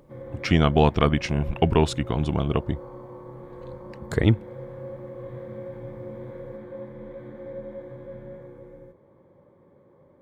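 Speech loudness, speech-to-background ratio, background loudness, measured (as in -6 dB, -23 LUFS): -23.5 LUFS, 16.5 dB, -40.0 LUFS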